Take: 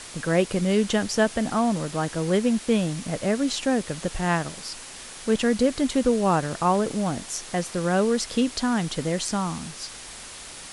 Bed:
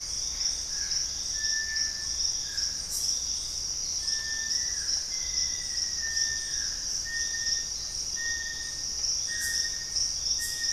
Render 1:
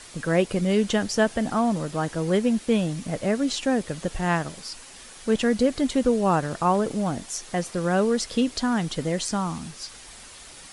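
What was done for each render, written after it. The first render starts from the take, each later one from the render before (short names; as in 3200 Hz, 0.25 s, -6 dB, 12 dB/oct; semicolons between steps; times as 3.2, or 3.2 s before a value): denoiser 6 dB, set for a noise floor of -41 dBFS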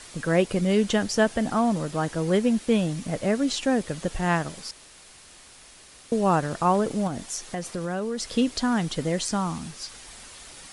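4.71–6.12 room tone; 7.07–8.35 compressor 4:1, threshold -26 dBFS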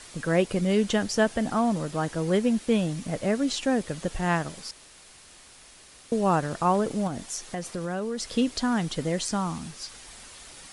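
gain -1.5 dB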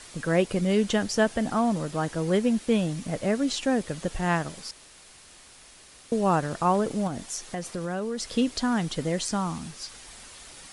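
nothing audible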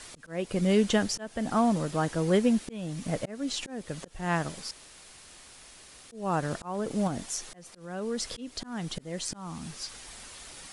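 auto swell 0.397 s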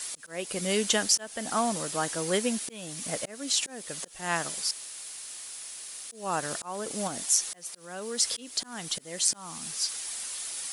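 RIAA curve recording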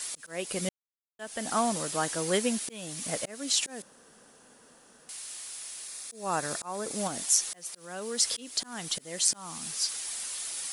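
0.69–1.19 mute; 3.82–5.09 room tone; 5.87–6.96 notch 3000 Hz, Q 7.1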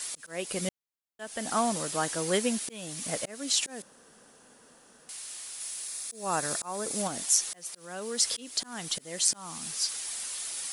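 5.6–7.02 high shelf 5900 Hz +5.5 dB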